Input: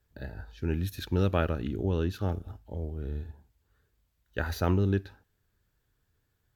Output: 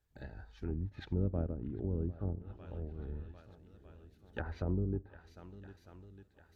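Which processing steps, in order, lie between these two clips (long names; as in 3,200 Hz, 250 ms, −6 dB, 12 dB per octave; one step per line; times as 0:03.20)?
floating-point word with a short mantissa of 6 bits
pitch vibrato 4.8 Hz 9.2 cents
on a send: feedback echo with a long and a short gap by turns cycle 1,251 ms, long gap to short 1.5 to 1, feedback 47%, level −18.5 dB
on the sum: pitch-shifted copies added −12 semitones −8 dB
treble cut that deepens with the level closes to 500 Hz, closed at −24.5 dBFS
level −8 dB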